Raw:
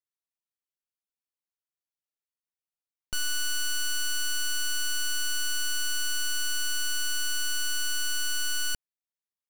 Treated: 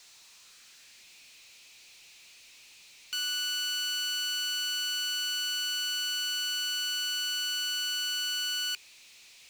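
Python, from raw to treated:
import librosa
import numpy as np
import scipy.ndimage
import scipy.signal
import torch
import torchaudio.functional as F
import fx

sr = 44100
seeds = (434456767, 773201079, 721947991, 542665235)

y = np.diff(x, prepend=0.0)
y = fx.filter_sweep_highpass(y, sr, from_hz=710.0, to_hz=2300.0, start_s=0.03, end_s=1.13, q=2.8)
y = fx.cabinet(y, sr, low_hz=350.0, low_slope=12, high_hz=7000.0, hz=(400.0, 2500.0, 4100.0), db=(10, 7, 5))
y = fx.power_curve(y, sr, exponent=0.35)
y = y * librosa.db_to_amplitude(-4.5)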